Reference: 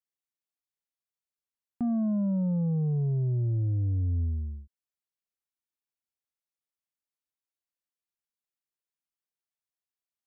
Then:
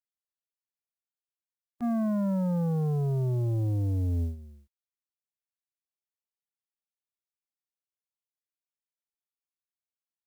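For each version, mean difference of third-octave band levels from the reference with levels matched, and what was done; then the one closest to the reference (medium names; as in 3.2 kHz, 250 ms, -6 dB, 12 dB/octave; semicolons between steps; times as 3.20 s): 6.5 dB: spectral contrast reduction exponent 0.64; gate -29 dBFS, range -14 dB; trim +1.5 dB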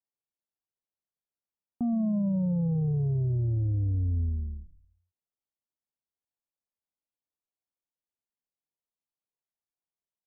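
2.0 dB: low-pass 1 kHz 24 dB/octave; on a send: frequency-shifting echo 111 ms, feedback 45%, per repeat -40 Hz, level -16 dB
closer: second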